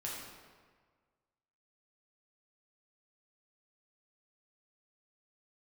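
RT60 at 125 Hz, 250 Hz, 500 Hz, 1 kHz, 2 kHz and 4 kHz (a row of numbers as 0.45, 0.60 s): 1.7, 1.6, 1.6, 1.6, 1.4, 1.1 s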